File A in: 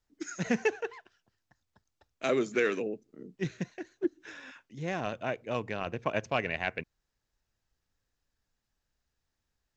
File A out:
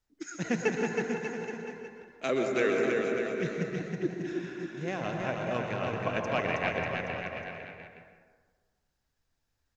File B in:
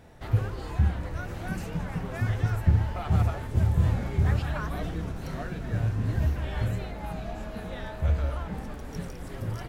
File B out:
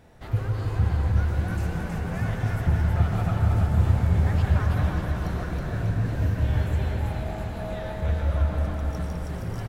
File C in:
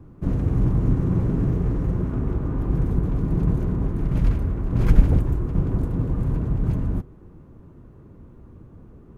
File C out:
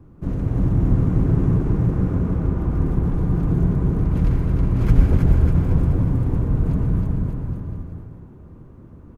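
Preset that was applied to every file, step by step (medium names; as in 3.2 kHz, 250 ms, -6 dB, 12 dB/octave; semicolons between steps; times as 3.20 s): on a send: bouncing-ball echo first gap 320 ms, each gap 0.85×, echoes 5; on the sum: plate-style reverb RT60 1.5 s, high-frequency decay 0.4×, pre-delay 105 ms, DRR 3 dB; trim -1.5 dB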